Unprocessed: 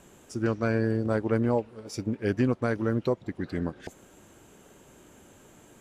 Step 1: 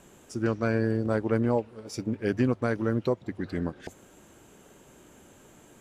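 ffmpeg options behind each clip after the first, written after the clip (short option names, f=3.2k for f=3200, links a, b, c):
-af "bandreject=f=50:t=h:w=6,bandreject=f=100:t=h:w=6"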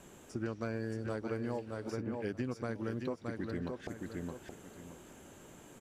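-filter_complex "[0:a]aecho=1:1:619|1238|1857:0.398|0.0836|0.0176,acrossover=split=1300|2700[a][b][c];[a]acompressor=threshold=-35dB:ratio=4[d];[b]acompressor=threshold=-52dB:ratio=4[e];[c]acompressor=threshold=-57dB:ratio=4[f];[d][e][f]amix=inputs=3:normalize=0,volume=-1dB"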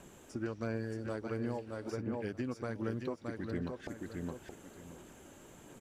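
-af "aphaser=in_gain=1:out_gain=1:delay=3.6:decay=0.25:speed=1.4:type=sinusoidal,volume=-1dB"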